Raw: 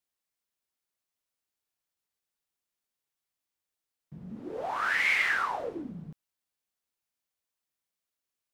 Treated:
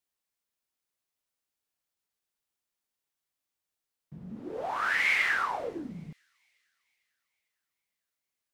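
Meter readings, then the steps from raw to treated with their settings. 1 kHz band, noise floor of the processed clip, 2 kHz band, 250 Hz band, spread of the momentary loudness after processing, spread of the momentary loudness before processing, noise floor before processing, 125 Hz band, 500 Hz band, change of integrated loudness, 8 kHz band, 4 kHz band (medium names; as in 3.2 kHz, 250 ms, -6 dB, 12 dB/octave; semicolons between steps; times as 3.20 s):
0.0 dB, under -85 dBFS, 0.0 dB, 0.0 dB, 19 LU, 19 LU, under -85 dBFS, 0.0 dB, 0.0 dB, 0.0 dB, 0.0 dB, 0.0 dB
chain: feedback echo behind a high-pass 452 ms, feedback 48%, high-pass 4.6 kHz, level -20.5 dB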